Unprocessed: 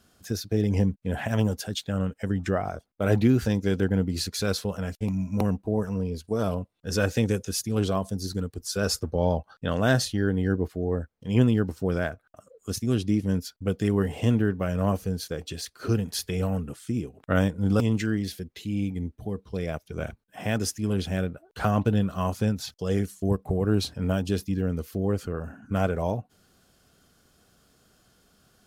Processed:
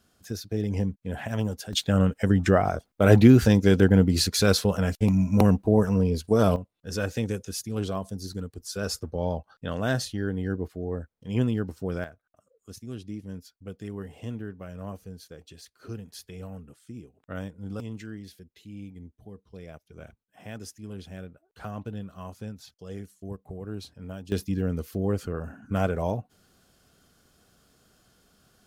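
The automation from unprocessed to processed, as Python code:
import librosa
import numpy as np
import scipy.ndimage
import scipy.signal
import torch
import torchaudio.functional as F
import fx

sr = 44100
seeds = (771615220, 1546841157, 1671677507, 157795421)

y = fx.gain(x, sr, db=fx.steps((0.0, -4.0), (1.73, 6.0), (6.56, -4.5), (12.04, -13.0), (24.32, -0.5)))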